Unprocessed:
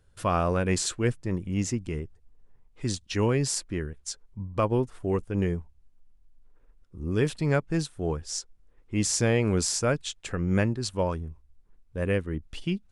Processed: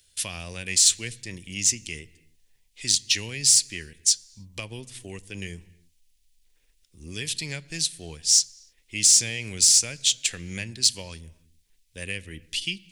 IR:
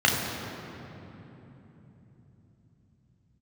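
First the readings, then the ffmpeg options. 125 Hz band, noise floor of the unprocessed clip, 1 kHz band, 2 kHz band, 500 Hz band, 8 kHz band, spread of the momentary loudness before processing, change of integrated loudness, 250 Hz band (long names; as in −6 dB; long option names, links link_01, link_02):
−10.5 dB, −61 dBFS, below −15 dB, +2.0 dB, −15.0 dB, +13.5 dB, 11 LU, +7.0 dB, −12.0 dB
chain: -filter_complex "[0:a]acrossover=split=170[link_01][link_02];[link_02]acompressor=threshold=-29dB:ratio=6[link_03];[link_01][link_03]amix=inputs=2:normalize=0,aexciter=amount=9.2:drive=9:freq=2000,asplit=2[link_04][link_05];[1:a]atrim=start_sample=2205,afade=type=out:start_time=0.37:duration=0.01,atrim=end_sample=16758[link_06];[link_05][link_06]afir=irnorm=-1:irlink=0,volume=-34dB[link_07];[link_04][link_07]amix=inputs=2:normalize=0,volume=-9.5dB"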